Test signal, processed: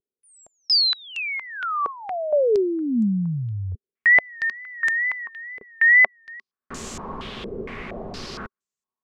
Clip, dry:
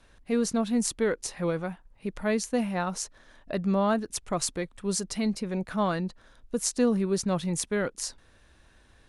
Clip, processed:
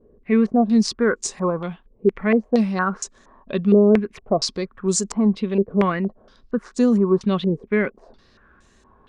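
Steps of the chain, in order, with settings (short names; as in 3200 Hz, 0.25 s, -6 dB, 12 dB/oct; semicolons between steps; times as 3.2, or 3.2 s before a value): vibrato 2.2 Hz 89 cents; small resonant body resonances 220/390/1100 Hz, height 10 dB, ringing for 40 ms; stepped low-pass 4.3 Hz 450–7200 Hz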